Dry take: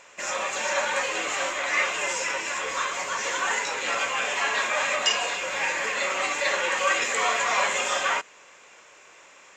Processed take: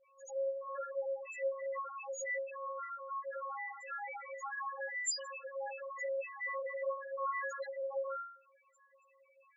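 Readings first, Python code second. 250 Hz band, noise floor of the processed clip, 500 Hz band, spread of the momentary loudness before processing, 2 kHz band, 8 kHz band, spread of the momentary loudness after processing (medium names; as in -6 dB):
under -40 dB, -69 dBFS, -7.0 dB, 5 LU, -18.0 dB, -16.0 dB, 6 LU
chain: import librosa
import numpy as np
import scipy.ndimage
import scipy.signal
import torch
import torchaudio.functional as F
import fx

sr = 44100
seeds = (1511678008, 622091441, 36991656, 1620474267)

y = fx.stiff_resonator(x, sr, f0_hz=270.0, decay_s=0.6, stiffness=0.002)
y = fx.spec_topn(y, sr, count=2)
y = y * librosa.db_to_amplitude(8.0)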